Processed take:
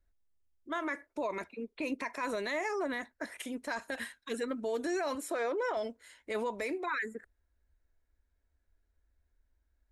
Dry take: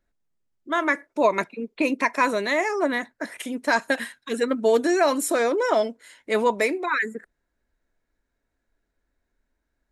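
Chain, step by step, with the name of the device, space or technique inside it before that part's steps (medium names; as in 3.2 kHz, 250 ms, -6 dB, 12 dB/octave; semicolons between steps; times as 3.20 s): 5.15–5.77 s: tone controls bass -12 dB, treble -9 dB; car stereo with a boomy subwoofer (resonant low shelf 100 Hz +9 dB, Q 3; peak limiter -18.5 dBFS, peak gain reduction 10 dB); trim -7.5 dB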